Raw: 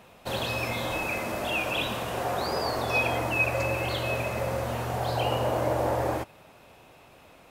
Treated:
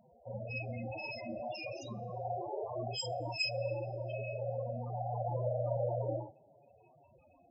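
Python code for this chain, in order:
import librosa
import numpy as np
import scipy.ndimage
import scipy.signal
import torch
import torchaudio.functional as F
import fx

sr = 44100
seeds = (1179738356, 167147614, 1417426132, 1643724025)

y = fx.self_delay(x, sr, depth_ms=0.32)
y = fx.bandpass_edges(y, sr, low_hz=120.0, high_hz=7500.0, at=(3.12, 5.24))
y = fx.room_early_taps(y, sr, ms=(34, 48, 68), db=(-4.0, -7.5, -7.0))
y = fx.spec_topn(y, sr, count=8)
y = fx.rev_double_slope(y, sr, seeds[0], early_s=0.21, late_s=1.9, knee_db=-22, drr_db=16.5)
y = y * 10.0 ** (-7.0 / 20.0)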